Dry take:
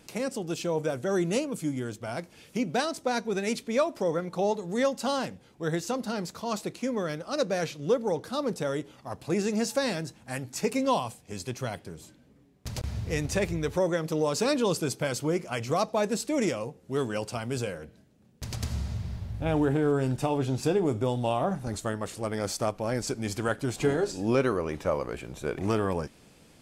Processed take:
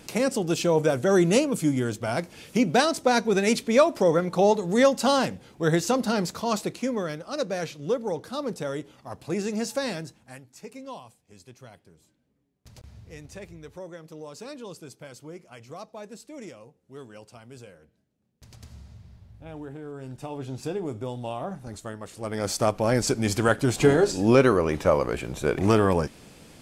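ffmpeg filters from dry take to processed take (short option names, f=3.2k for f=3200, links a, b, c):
-af "volume=28dB,afade=t=out:st=6.2:d=1.01:silence=0.398107,afade=t=out:st=9.96:d=0.48:silence=0.223872,afade=t=in:st=19.92:d=0.67:silence=0.375837,afade=t=in:st=22.11:d=0.68:silence=0.237137"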